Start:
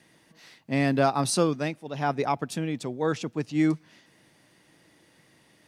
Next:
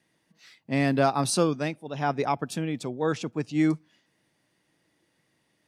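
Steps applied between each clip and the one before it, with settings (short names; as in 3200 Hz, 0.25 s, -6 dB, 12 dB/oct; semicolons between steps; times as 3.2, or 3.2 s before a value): spectral noise reduction 11 dB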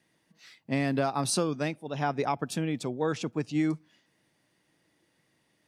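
compressor, threshold -23 dBFS, peak gain reduction 7 dB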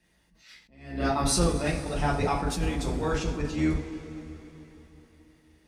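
octaver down 2 oct, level 0 dB; two-slope reverb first 0.33 s, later 3.8 s, from -19 dB, DRR -5 dB; attack slew limiter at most 100 dB/s; gain -2.5 dB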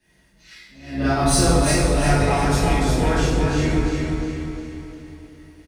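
in parallel at -6 dB: hard clip -27 dBFS, distortion -8 dB; on the sum: feedback echo 0.355 s, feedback 41%, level -4 dB; plate-style reverb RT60 0.75 s, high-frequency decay 1×, DRR -9 dB; gain -5 dB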